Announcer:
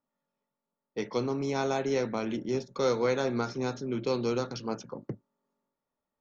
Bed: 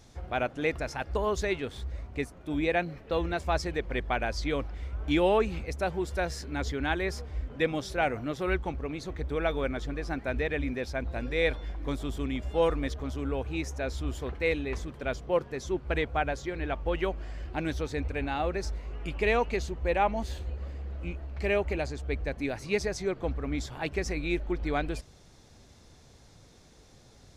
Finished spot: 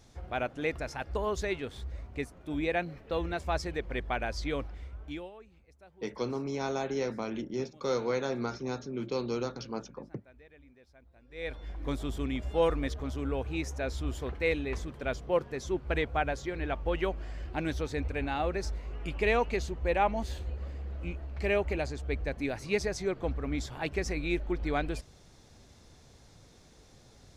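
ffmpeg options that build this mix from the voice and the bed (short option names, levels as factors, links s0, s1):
-filter_complex "[0:a]adelay=5050,volume=0.668[s0];[1:a]volume=13.3,afade=t=out:st=4.61:d=0.7:silence=0.0668344,afade=t=in:st=11.28:d=0.61:silence=0.0530884[s1];[s0][s1]amix=inputs=2:normalize=0"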